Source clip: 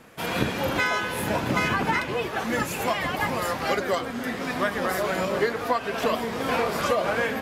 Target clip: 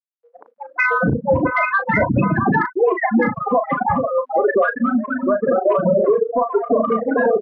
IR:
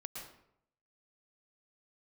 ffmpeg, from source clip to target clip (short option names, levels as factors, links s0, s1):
-filter_complex "[0:a]asetnsamples=n=441:p=0,asendcmd='5.23 lowpass f 1400',lowpass=f=3700:p=1,afftfilt=real='re*gte(hypot(re,im),0.224)':imag='im*gte(hypot(re,im),0.224)':win_size=1024:overlap=0.75,asoftclip=type=tanh:threshold=0.251,asplit=2[s0][s1];[s1]adelay=36,volume=0.335[s2];[s0][s2]amix=inputs=2:normalize=0,acrossover=split=1100[s3][s4];[s3]adelay=670[s5];[s5][s4]amix=inputs=2:normalize=0,alimiter=level_in=14.1:limit=0.891:release=50:level=0:latency=1,volume=0.447"